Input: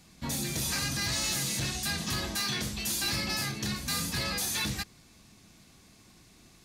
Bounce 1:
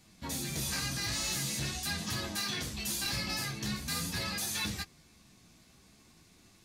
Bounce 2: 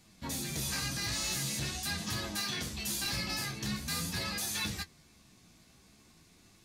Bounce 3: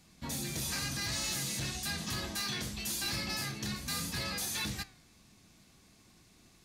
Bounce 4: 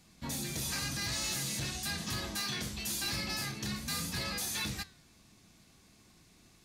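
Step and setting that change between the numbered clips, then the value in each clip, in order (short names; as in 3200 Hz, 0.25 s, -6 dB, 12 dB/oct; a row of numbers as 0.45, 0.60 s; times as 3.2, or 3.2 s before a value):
flange, regen: -17, +35, -87, +86%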